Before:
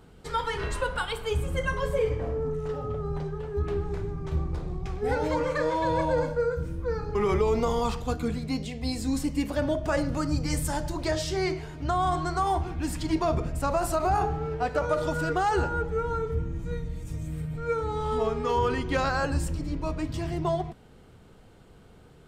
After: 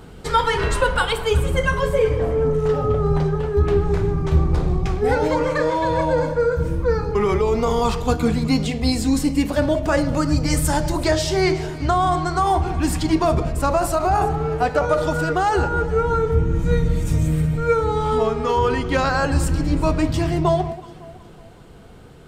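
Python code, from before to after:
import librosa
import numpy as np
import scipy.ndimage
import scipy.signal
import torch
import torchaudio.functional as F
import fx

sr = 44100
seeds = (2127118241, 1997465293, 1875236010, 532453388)

p1 = fx.rider(x, sr, range_db=10, speed_s=0.5)
p2 = p1 + fx.echo_alternate(p1, sr, ms=185, hz=970.0, feedback_pct=61, wet_db=-13.5, dry=0)
y = p2 * librosa.db_to_amplitude(8.5)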